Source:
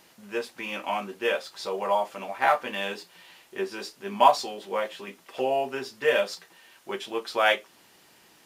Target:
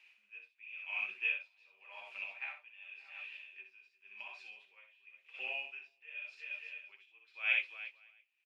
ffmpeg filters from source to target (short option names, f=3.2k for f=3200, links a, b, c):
-filter_complex "[0:a]asplit=3[a][b][c];[a]afade=t=out:st=3.96:d=0.02[d];[b]acompressor=threshold=-32dB:ratio=5,afade=t=in:st=3.96:d=0.02,afade=t=out:st=4.76:d=0.02[e];[c]afade=t=in:st=4.76:d=0.02[f];[d][e][f]amix=inputs=3:normalize=0,bandpass=f=2.5k:t=q:w=17:csg=0,aecho=1:1:62|353|576|683:0.631|0.168|0.112|0.119,aeval=exprs='val(0)*pow(10,-23*(0.5-0.5*cos(2*PI*0.91*n/s))/20)':c=same,volume=9.5dB"